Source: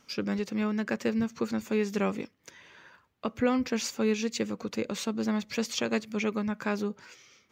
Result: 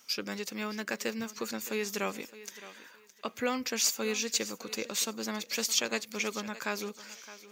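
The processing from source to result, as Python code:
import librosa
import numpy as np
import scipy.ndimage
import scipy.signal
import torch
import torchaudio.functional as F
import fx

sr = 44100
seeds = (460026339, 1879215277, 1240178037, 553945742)

y = fx.riaa(x, sr, side='recording')
y = fx.echo_thinned(y, sr, ms=615, feedback_pct=27, hz=230.0, wet_db=-15.5)
y = F.gain(torch.from_numpy(y), -2.0).numpy()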